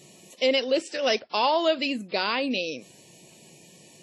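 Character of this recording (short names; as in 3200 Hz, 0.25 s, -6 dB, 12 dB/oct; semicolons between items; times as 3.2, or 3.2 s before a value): WMA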